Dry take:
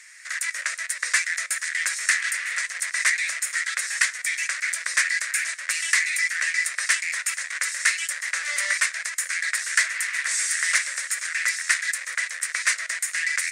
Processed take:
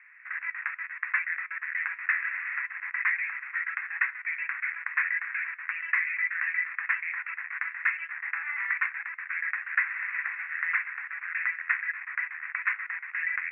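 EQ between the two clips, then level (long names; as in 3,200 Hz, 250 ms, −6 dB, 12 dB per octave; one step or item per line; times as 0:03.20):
Chebyshev band-pass filter 820–2,600 Hz, order 5
spectral tilt −4 dB per octave
0.0 dB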